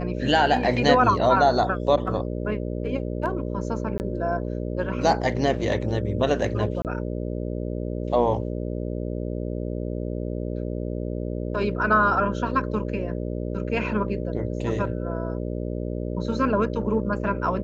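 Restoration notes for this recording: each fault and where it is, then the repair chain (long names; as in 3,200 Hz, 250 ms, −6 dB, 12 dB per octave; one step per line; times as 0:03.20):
mains buzz 60 Hz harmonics 10 −29 dBFS
0:03.98–0:04.00: drop-out 19 ms
0:06.82–0:06.85: drop-out 28 ms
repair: hum removal 60 Hz, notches 10
repair the gap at 0:03.98, 19 ms
repair the gap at 0:06.82, 28 ms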